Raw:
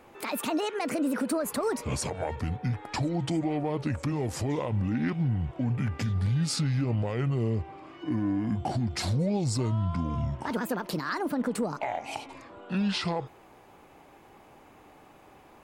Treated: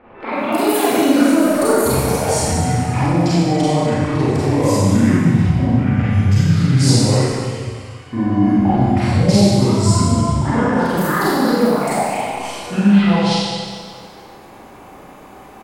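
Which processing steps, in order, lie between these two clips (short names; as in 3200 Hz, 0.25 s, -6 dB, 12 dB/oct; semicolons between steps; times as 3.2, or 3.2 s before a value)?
7.21–8.13 passive tone stack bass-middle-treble 10-0-10; bands offset in time lows, highs 0.32 s, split 2800 Hz; Schroeder reverb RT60 1.8 s, combs from 31 ms, DRR -9.5 dB; gain +5 dB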